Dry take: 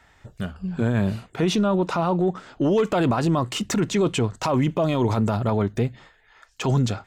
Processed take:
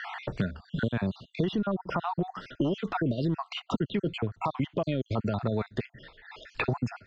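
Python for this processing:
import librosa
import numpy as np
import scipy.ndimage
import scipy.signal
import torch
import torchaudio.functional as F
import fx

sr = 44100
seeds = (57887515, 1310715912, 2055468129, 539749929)

y = fx.spec_dropout(x, sr, seeds[0], share_pct=50)
y = scipy.signal.sosfilt(scipy.signal.butter(4, 4700.0, 'lowpass', fs=sr, output='sos'), y)
y = fx.band_squash(y, sr, depth_pct=100)
y = F.gain(torch.from_numpy(y), -6.0).numpy()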